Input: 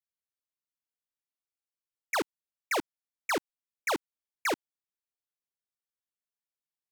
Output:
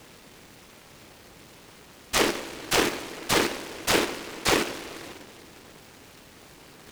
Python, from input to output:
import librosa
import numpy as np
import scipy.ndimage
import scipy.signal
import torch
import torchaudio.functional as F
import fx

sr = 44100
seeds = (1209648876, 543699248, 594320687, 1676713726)

p1 = fx.low_shelf(x, sr, hz=430.0, db=6.5)
p2 = fx.rev_double_slope(p1, sr, seeds[0], early_s=0.59, late_s=3.6, knee_db=-18, drr_db=-5.0)
p3 = fx.env_lowpass(p2, sr, base_hz=1400.0, full_db=-21.5)
p4 = fx.dmg_noise_colour(p3, sr, seeds[1], colour='pink', level_db=-46.0)
p5 = fx.lowpass(p4, sr, hz=2200.0, slope=6)
p6 = fx.peak_eq(p5, sr, hz=680.0, db=-4.0, octaves=0.36)
p7 = fx.level_steps(p6, sr, step_db=15)
p8 = p6 + (p7 * 10.0 ** (-1.0 / 20.0))
p9 = fx.highpass(p8, sr, hz=220.0, slope=6)
y = fx.noise_mod_delay(p9, sr, seeds[2], noise_hz=1600.0, depth_ms=0.22)